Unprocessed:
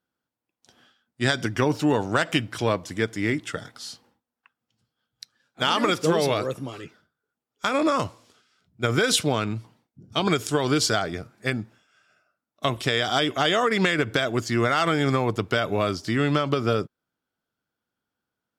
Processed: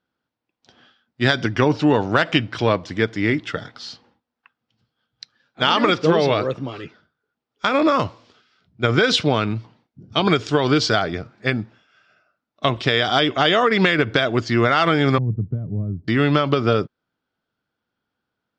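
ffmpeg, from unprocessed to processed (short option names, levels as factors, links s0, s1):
-filter_complex "[0:a]asettb=1/sr,asplit=3[s0][s1][s2];[s0]atrim=end=5.954[s3];[s1]atrim=start=5.95:end=6.76,asetpts=PTS-STARTPTS,afade=t=in:d=0.004:c=qsin,afade=t=out:st=0.806:d=0.004:c=qsin,highshelf=f=7300:g=-7[s4];[s2]atrim=start=6.756[s5];[s3][s4]acrossfade=d=0.004:c1=hsin:c2=qsin[s6];[s6][s5]acrossfade=d=0.004:c1=qsin:c2=hsin,asettb=1/sr,asplit=3[s7][s8][s9];[s7]atrim=end=15.184[s10];[s8]atrim=start=15.18:end=16.08,asetpts=PTS-STARTPTS,afade=t=in:d=0.004:c=qsin,afade=t=out:st=0.896:d=0.004:c=qsin,lowpass=f=150:t=q:w=1.5[s11];[s9]atrim=start=16.076[s12];[s10][s11]acrossfade=d=0.004:c1=hsin:c2=qsin[s13];[s13][s12]acrossfade=d=0.004:c1=qsin:c2=hsin,lowpass=f=5000:w=0.5412,lowpass=f=5000:w=1.3066,volume=1.78"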